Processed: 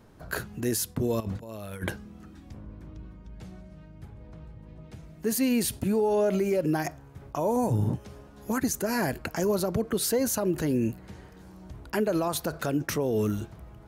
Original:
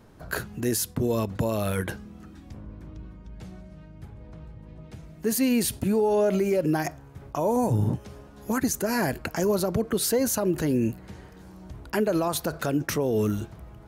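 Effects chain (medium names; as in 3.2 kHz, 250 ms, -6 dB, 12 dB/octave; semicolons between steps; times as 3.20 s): 1.20–1.89 s: compressor with a negative ratio -32 dBFS, ratio -0.5; trim -2 dB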